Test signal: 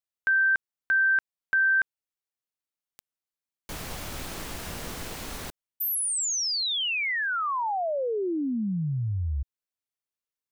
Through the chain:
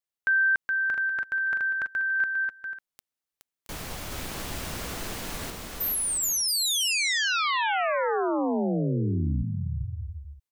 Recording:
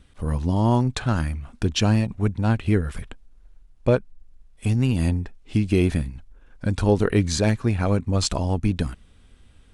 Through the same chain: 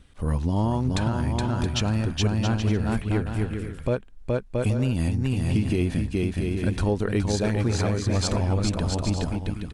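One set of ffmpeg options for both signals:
-filter_complex "[0:a]asplit=2[s0][s1];[s1]aecho=0:1:420|672|823.2|913.9|968.4:0.631|0.398|0.251|0.158|0.1[s2];[s0][s2]amix=inputs=2:normalize=0,alimiter=limit=0.2:level=0:latency=1:release=203"

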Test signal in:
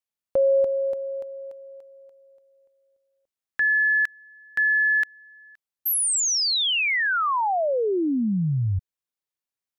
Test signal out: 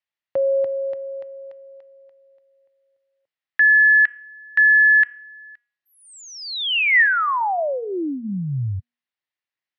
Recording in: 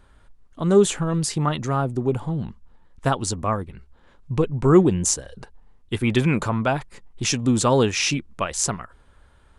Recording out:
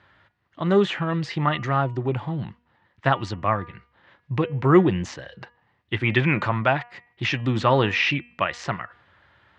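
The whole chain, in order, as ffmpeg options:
-filter_complex "[0:a]highpass=f=100:w=0.5412,highpass=f=100:w=1.3066,equalizer=f=160:t=q:w=4:g=-4,equalizer=f=240:t=q:w=4:g=-9,equalizer=f=440:t=q:w=4:g=-8,equalizer=f=1900:t=q:w=4:g=9,equalizer=f=2800:t=q:w=4:g=3,lowpass=f=4600:w=0.5412,lowpass=f=4600:w=1.3066,bandreject=f=240.3:t=h:w=4,bandreject=f=480.6:t=h:w=4,bandreject=f=720.9:t=h:w=4,bandreject=f=961.2:t=h:w=4,bandreject=f=1201.5:t=h:w=4,bandreject=f=1441.8:t=h:w=4,bandreject=f=1682.1:t=h:w=4,bandreject=f=1922.4:t=h:w=4,bandreject=f=2162.7:t=h:w=4,bandreject=f=2403:t=h:w=4,bandreject=f=2643.3:t=h:w=4,bandreject=f=2883.6:t=h:w=4,bandreject=f=3123.9:t=h:w=4,acrossover=split=3400[s0][s1];[s1]acompressor=threshold=0.00708:ratio=4:attack=1:release=60[s2];[s0][s2]amix=inputs=2:normalize=0,volume=1.26"

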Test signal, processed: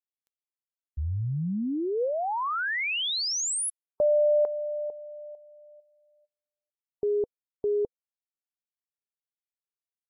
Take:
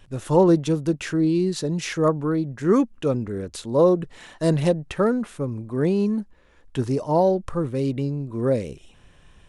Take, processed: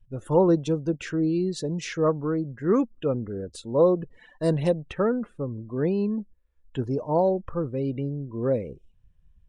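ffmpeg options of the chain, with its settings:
-af "afftdn=nr=25:nf=-41,equalizer=f=490:t=o:w=0.23:g=3.5,volume=0.631"

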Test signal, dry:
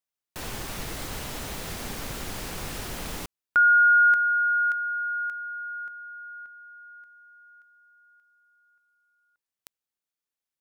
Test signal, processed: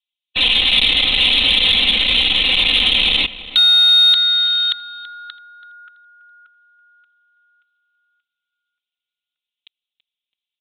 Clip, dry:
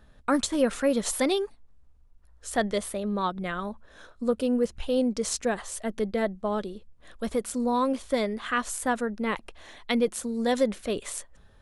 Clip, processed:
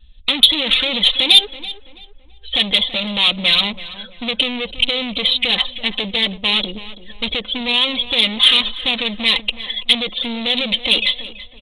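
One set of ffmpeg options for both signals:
-filter_complex "[0:a]afftdn=nr=23:nf=-44,highshelf=f=2400:g=3,aecho=1:1:3.9:0.97,adynamicequalizer=threshold=0.0251:dfrequency=770:dqfactor=0.75:tfrequency=770:tqfactor=0.75:attack=5:release=100:ratio=0.333:range=1.5:mode=boostabove:tftype=bell,alimiter=limit=0.178:level=0:latency=1:release=27,acompressor=threshold=0.0501:ratio=5:attack=32:release=126:knee=1:detection=peak,aresample=8000,asoftclip=type=hard:threshold=0.0237,aresample=44100,aexciter=amount=14.2:drive=8.5:freq=2500,asoftclip=type=tanh:threshold=0.376,asplit=2[s0][s1];[s1]adelay=331,lowpass=f=2300:p=1,volume=0.2,asplit=2[s2][s3];[s3]adelay=331,lowpass=f=2300:p=1,volume=0.37,asplit=2[s4][s5];[s5]adelay=331,lowpass=f=2300:p=1,volume=0.37,asplit=2[s6][s7];[s7]adelay=331,lowpass=f=2300:p=1,volume=0.37[s8];[s0][s2][s4][s6][s8]amix=inputs=5:normalize=0,volume=2.51"

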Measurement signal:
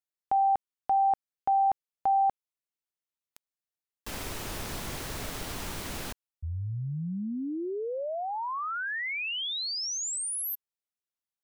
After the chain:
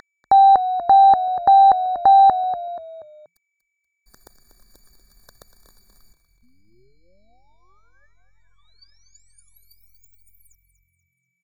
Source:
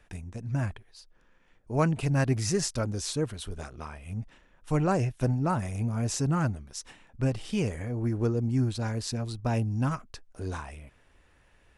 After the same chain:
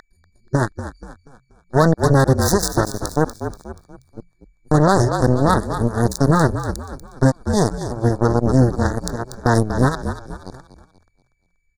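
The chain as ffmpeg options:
-filter_complex "[0:a]aeval=exprs='0.266*(cos(1*acos(clip(val(0)/0.266,-1,1)))-cos(1*PI/2))+0.0237*(cos(2*acos(clip(val(0)/0.266,-1,1)))-cos(2*PI/2))+0.0422*(cos(7*acos(clip(val(0)/0.266,-1,1)))-cos(7*PI/2))+0.00266*(cos(8*acos(clip(val(0)/0.266,-1,1)))-cos(8*PI/2))':c=same,aeval=exprs='val(0)+0.0158*sin(2*PI*2300*n/s)':c=same,anlmdn=0.0251,asuperstop=centerf=2600:order=12:qfactor=1.4,asplit=5[s0][s1][s2][s3][s4];[s1]adelay=240,afreqshift=-44,volume=0.266[s5];[s2]adelay=480,afreqshift=-88,volume=0.11[s6];[s3]adelay=720,afreqshift=-132,volume=0.0447[s7];[s4]adelay=960,afreqshift=-176,volume=0.0184[s8];[s0][s5][s6][s7][s8]amix=inputs=5:normalize=0,alimiter=level_in=10:limit=0.891:release=50:level=0:latency=1,volume=0.794"

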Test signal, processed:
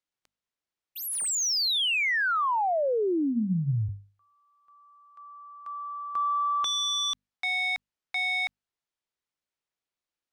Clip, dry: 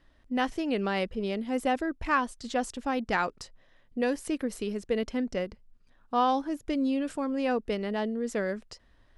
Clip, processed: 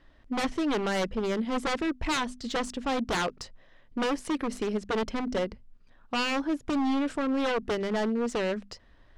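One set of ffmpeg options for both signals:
-af "aeval=exprs='0.0473*(abs(mod(val(0)/0.0473+3,4)-2)-1)':c=same,adynamicsmooth=sensitivity=6.5:basefreq=6900,bandreject=f=50:t=h:w=6,bandreject=f=100:t=h:w=6,bandreject=f=150:t=h:w=6,bandreject=f=200:t=h:w=6,bandreject=f=250:t=h:w=6,volume=1.68"

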